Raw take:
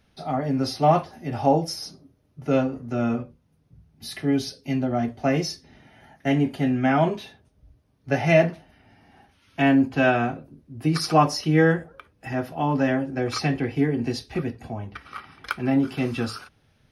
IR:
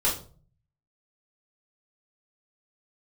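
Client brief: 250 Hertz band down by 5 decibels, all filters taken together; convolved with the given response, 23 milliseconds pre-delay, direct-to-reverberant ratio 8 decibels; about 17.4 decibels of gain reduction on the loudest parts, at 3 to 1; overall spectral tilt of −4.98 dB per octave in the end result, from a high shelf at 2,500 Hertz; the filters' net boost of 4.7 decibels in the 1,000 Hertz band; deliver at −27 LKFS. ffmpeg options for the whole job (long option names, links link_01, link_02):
-filter_complex "[0:a]equalizer=frequency=250:width_type=o:gain=-6.5,equalizer=frequency=1000:width_type=o:gain=8,highshelf=frequency=2500:gain=-4.5,acompressor=threshold=-33dB:ratio=3,asplit=2[link_01][link_02];[1:a]atrim=start_sample=2205,adelay=23[link_03];[link_02][link_03]afir=irnorm=-1:irlink=0,volume=-19dB[link_04];[link_01][link_04]amix=inputs=2:normalize=0,volume=7.5dB"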